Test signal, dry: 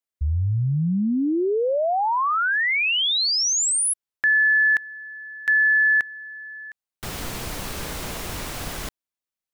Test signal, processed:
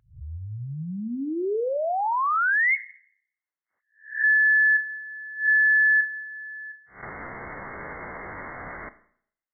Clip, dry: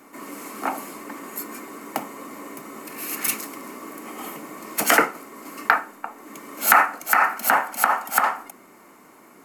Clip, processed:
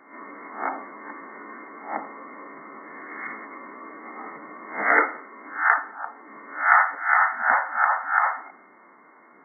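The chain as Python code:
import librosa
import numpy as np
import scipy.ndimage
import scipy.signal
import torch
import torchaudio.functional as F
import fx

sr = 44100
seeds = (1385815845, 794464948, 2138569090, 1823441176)

p1 = fx.spec_swells(x, sr, rise_s=0.38)
p2 = 10.0 ** (-16.0 / 20.0) * np.tanh(p1 / 10.0 ** (-16.0 / 20.0))
p3 = p1 + F.gain(torch.from_numpy(p2), -6.0).numpy()
p4 = fx.brickwall_lowpass(p3, sr, high_hz=2200.0)
p5 = fx.tilt_eq(p4, sr, slope=3.0)
p6 = fx.rev_schroeder(p5, sr, rt60_s=0.62, comb_ms=26, drr_db=14.0)
p7 = fx.spec_gate(p6, sr, threshold_db=-20, keep='strong')
p8 = fx.dynamic_eq(p7, sr, hz=410.0, q=2.7, threshold_db=-38.0, ratio=2.5, max_db=3)
y = F.gain(torch.from_numpy(p8), -6.0).numpy()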